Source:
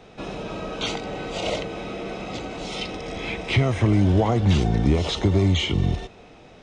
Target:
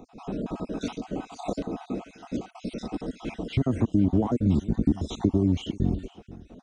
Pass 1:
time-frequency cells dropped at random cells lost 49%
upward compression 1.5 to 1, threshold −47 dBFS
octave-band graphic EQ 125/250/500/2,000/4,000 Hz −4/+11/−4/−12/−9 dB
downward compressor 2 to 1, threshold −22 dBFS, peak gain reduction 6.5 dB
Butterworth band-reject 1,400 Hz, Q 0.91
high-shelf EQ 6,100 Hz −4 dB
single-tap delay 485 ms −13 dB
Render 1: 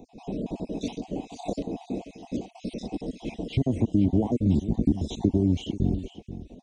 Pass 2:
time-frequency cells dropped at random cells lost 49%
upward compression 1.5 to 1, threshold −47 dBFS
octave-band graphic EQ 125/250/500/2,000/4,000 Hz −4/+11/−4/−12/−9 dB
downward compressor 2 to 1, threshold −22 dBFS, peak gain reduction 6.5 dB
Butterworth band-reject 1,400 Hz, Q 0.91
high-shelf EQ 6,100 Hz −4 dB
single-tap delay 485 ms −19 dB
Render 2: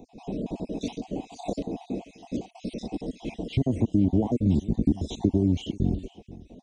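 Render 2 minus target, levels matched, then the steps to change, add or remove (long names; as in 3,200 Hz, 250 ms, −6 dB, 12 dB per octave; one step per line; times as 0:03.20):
1,000 Hz band −3.0 dB
remove: Butterworth band-reject 1,400 Hz, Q 0.91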